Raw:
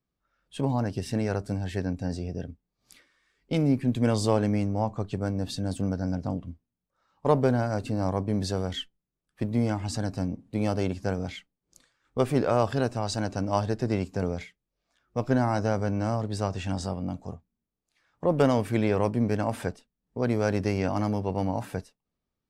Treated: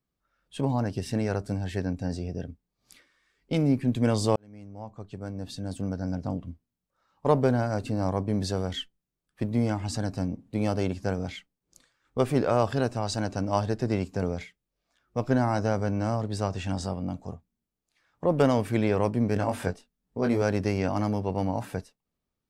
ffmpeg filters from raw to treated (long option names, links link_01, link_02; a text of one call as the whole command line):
ffmpeg -i in.wav -filter_complex "[0:a]asettb=1/sr,asplit=3[link_01][link_02][link_03];[link_01]atrim=end=19.344[link_04];[link_02]atrim=start=19.34:end=20.42,asetpts=PTS-STARTPTS,afade=type=in:duration=0.004:curve=qsin,afade=type=out:start_time=1.076:duration=0.004:curve=qsin,asplit=2[link_05][link_06];[link_06]adelay=21,volume=-5dB[link_07];[link_05][link_07]amix=inputs=2:normalize=0,atrim=end_sample=47628[link_08];[link_03]atrim=start=20.416[link_09];[link_04][link_08]acrossfade=duration=0.004:curve1=hsin:curve2=qsin[link_10];[link_10][link_09]acrossfade=duration=0.004:curve1=qsin:curve2=hsin,asplit=2[link_11][link_12];[link_11]atrim=end=4.36,asetpts=PTS-STARTPTS,afade=type=out:start_time=4.356:duration=0.004:curve=hsin[link_13];[link_12]atrim=start=4.36,asetpts=PTS-STARTPTS,afade=type=in:duration=2.1[link_14];[link_13][link_14]concat=n=2:v=0:a=1" out.wav